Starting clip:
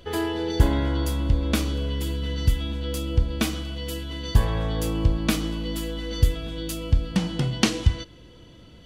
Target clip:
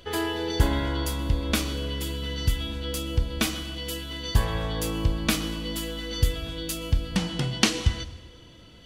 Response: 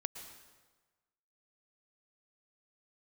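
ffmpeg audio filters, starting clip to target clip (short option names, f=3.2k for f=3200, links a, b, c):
-filter_complex "[0:a]tiltshelf=f=810:g=-3,asplit=2[a][b];[1:a]atrim=start_sample=2205[c];[b][c]afir=irnorm=-1:irlink=0,volume=-4.5dB[d];[a][d]amix=inputs=2:normalize=0,volume=-4dB"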